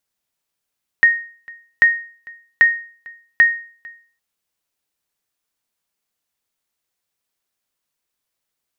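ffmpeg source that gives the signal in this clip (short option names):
-f lavfi -i "aevalsrc='0.631*(sin(2*PI*1860*mod(t,0.79))*exp(-6.91*mod(t,0.79)/0.44)+0.0531*sin(2*PI*1860*max(mod(t,0.79)-0.45,0))*exp(-6.91*max(mod(t,0.79)-0.45,0)/0.44))':d=3.16:s=44100"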